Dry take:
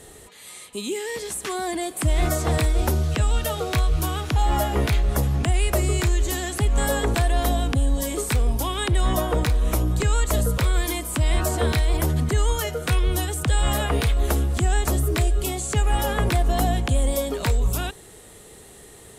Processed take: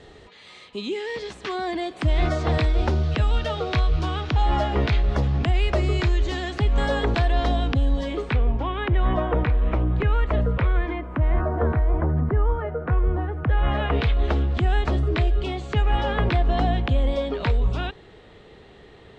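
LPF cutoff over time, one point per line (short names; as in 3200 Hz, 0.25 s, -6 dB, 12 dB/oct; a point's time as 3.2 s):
LPF 24 dB/oct
7.88 s 4600 Hz
8.55 s 2600 Hz
10.54 s 2600 Hz
11.6 s 1500 Hz
13.21 s 1500 Hz
14.06 s 3800 Hz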